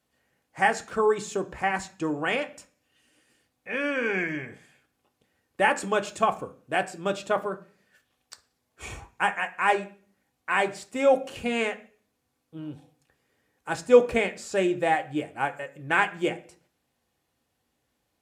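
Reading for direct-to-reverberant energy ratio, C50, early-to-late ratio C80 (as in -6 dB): 5.0 dB, 17.0 dB, 21.0 dB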